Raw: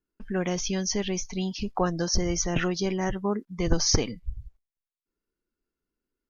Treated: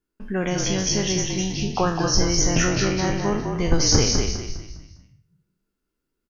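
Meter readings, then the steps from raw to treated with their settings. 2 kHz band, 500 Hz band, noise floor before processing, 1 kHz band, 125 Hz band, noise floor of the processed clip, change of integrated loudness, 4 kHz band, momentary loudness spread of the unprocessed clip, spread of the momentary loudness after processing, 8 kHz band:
+7.0 dB, +4.5 dB, below −85 dBFS, +6.0 dB, +7.0 dB, −81 dBFS, +6.0 dB, +7.0 dB, 8 LU, 9 LU, can't be measured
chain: peak hold with a decay on every bin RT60 0.51 s
echo with shifted repeats 203 ms, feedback 37%, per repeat −39 Hz, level −4 dB
level +2.5 dB

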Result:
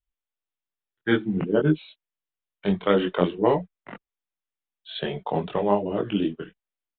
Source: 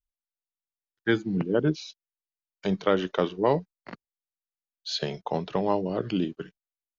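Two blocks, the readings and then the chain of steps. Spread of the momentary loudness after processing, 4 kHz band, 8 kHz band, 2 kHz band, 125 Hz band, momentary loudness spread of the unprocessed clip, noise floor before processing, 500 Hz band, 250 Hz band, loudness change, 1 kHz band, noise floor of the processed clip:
11 LU, −0.5 dB, can't be measured, +2.0 dB, +2.5 dB, 17 LU, below −85 dBFS, +3.0 dB, +3.5 dB, +3.0 dB, +2.5 dB, below −85 dBFS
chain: multi-voice chorus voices 4, 1.2 Hz, delay 22 ms, depth 3.2 ms
downsampling to 8,000 Hz
level +5.5 dB

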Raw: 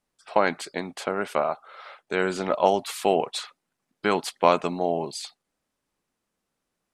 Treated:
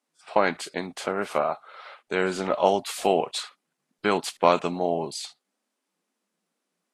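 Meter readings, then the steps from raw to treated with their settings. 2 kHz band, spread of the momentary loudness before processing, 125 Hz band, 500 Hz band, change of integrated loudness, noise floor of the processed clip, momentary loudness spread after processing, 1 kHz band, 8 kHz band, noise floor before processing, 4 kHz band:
−0.5 dB, 14 LU, 0.0 dB, 0.0 dB, −0.5 dB, −82 dBFS, 13 LU, −0.5 dB, +1.0 dB, −82 dBFS, +0.5 dB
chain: Ogg Vorbis 32 kbit/s 32,000 Hz

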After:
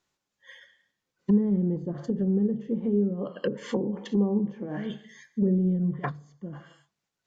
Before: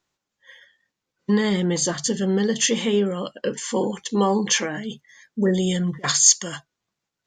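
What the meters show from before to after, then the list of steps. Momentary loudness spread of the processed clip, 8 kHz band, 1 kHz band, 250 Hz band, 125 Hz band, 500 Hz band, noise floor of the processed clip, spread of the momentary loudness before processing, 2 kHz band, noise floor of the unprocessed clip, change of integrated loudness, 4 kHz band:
15 LU, below −35 dB, −12.5 dB, −2.0 dB, −1.5 dB, −7.0 dB, −85 dBFS, 15 LU, −14.5 dB, −84 dBFS, −6.5 dB, −23.5 dB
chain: reverb whose tail is shaped and stops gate 310 ms falling, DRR 12 dB
treble cut that deepens with the level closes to 310 Hz, closed at −19 dBFS
level −2 dB

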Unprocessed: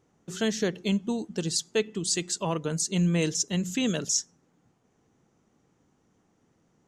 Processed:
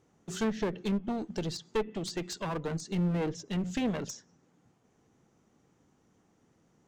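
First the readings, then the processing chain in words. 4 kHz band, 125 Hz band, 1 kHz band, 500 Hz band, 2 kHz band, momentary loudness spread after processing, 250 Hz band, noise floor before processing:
−10.5 dB, −4.5 dB, −0.5 dB, −4.0 dB, −6.5 dB, 6 LU, −4.0 dB, −70 dBFS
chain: treble cut that deepens with the level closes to 1,500 Hz, closed at −22.5 dBFS
asymmetric clip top −34.5 dBFS

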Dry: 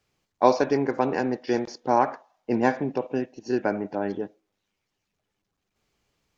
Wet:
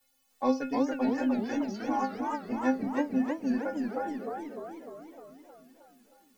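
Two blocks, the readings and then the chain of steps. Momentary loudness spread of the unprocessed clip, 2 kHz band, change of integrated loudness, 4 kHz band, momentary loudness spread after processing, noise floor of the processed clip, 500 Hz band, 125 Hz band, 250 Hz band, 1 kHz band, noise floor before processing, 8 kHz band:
9 LU, −6.5 dB, −5.5 dB, −6.5 dB, 15 LU, −70 dBFS, −9.0 dB, −11.0 dB, −0.5 dB, −7.5 dB, −81 dBFS, can't be measured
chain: reverb reduction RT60 0.78 s
low-shelf EQ 79 Hz +6.5 dB
background noise white −64 dBFS
stiff-string resonator 260 Hz, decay 0.26 s, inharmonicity 0.008
feedback echo with a swinging delay time 307 ms, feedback 61%, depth 211 cents, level −3 dB
level +5.5 dB

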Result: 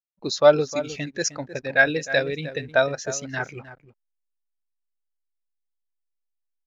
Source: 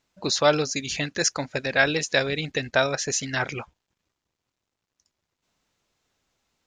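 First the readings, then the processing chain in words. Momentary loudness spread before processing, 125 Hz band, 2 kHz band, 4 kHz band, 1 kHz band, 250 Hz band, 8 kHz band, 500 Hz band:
7 LU, −1.5 dB, +1.5 dB, −5.0 dB, 0.0 dB, −0.5 dB, −4.0 dB, +4.0 dB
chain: slap from a distant wall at 53 metres, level −9 dB
slack as between gear wheels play −38 dBFS
every bin expanded away from the loudest bin 1.5 to 1
level +1.5 dB

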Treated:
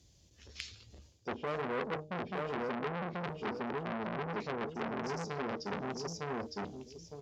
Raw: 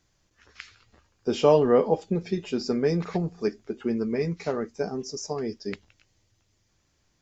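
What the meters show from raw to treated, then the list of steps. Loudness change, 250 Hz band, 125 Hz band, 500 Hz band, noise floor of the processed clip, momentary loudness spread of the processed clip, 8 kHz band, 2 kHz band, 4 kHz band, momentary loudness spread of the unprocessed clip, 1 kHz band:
−12.0 dB, −11.5 dB, −10.5 dB, −13.5 dB, −64 dBFS, 10 LU, can't be measured, +0.5 dB, −7.5 dB, 17 LU, −4.5 dB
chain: drawn EQ curve 560 Hz 0 dB, 1,400 Hz −14 dB, 3,400 Hz +3 dB
treble cut that deepens with the level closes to 790 Hz, closed at −22.5 dBFS
low-shelf EQ 120 Hz +10 dB
hum removal 153.2 Hz, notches 11
hard clipping −15.5 dBFS, distortion −17 dB
high-pass filter 49 Hz 24 dB per octave
repeating echo 909 ms, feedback 19%, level −4 dB
reversed playback
downward compressor 8 to 1, threshold −31 dBFS, peak gain reduction 14 dB
reversed playback
saturating transformer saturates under 2,200 Hz
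level +2.5 dB

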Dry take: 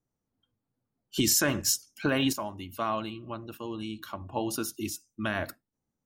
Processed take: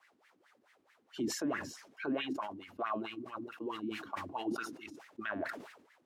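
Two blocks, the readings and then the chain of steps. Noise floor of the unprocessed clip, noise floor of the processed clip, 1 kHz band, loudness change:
below −85 dBFS, −72 dBFS, −4.5 dB, −9.5 dB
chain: notch filter 560 Hz, Q 12
in parallel at −4 dB: bit-depth reduction 8 bits, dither triangular
on the sum: LFO wah 4.6 Hz 250–2,000 Hz, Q 4.9
brickwall limiter −28.5 dBFS, peak gain reduction 7.5 dB
level that may fall only so fast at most 73 dB per second
level +1.5 dB

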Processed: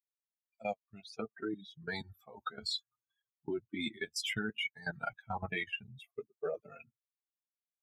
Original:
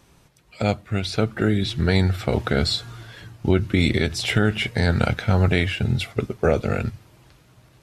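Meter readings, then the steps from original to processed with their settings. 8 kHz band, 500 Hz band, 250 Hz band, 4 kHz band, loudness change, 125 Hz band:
−12.0 dB, −17.5 dB, −20.0 dB, −13.5 dB, −17.5 dB, −29.5 dB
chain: spectral dynamics exaggerated over time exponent 3
high-pass filter 290 Hz 12 dB per octave
output level in coarse steps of 17 dB
flanger 0.61 Hz, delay 6.3 ms, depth 3.9 ms, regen −23%
level +2.5 dB

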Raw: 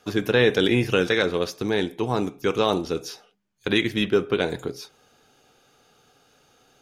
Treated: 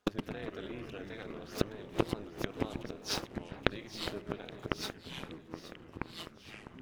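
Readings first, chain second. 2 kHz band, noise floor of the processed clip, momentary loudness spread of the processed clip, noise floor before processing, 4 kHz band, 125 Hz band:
−15.5 dB, −56 dBFS, 11 LU, −61 dBFS, −12.5 dB, −12.0 dB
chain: converter with a step at zero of −32.5 dBFS
noise gate −34 dBFS, range −43 dB
high-shelf EQ 6,100 Hz −10.5 dB
in parallel at −2.5 dB: brickwall limiter −14.5 dBFS, peak gain reduction 7.5 dB
on the sum: gate with flip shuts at −14 dBFS, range −28 dB
amplitude modulation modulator 210 Hz, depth 75%
on a send: delay that swaps between a low-pass and a high-pass 411 ms, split 2,400 Hz, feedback 74%, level −11.5 dB
on the sum: delay with pitch and tempo change per echo 98 ms, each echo −4 semitones, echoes 3, each echo −6 dB
level +3.5 dB

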